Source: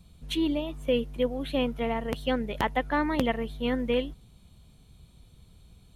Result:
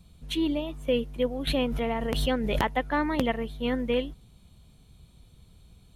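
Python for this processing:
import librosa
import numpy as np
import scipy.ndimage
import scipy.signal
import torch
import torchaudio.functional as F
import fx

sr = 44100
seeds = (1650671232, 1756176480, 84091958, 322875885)

y = fx.pre_swell(x, sr, db_per_s=22.0, at=(1.47, 2.76))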